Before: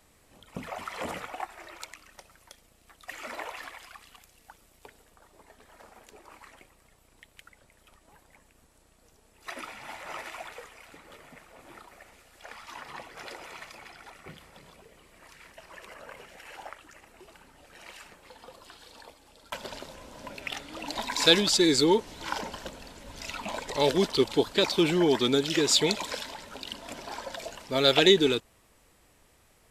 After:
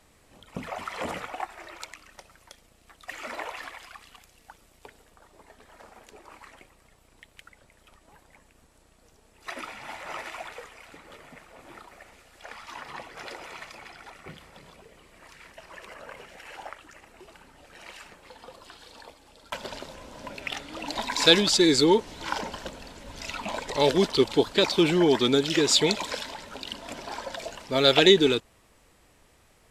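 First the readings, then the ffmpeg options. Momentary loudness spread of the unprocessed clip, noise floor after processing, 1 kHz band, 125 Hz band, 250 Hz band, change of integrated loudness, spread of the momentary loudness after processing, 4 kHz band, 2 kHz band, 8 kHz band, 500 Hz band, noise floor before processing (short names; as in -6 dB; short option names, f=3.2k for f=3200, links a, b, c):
24 LU, -61 dBFS, +2.5 dB, +2.5 dB, +2.5 dB, +2.5 dB, 24 LU, +2.0 dB, +2.5 dB, +1.0 dB, +2.5 dB, -63 dBFS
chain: -af "highshelf=f=12k:g=-9,volume=2.5dB"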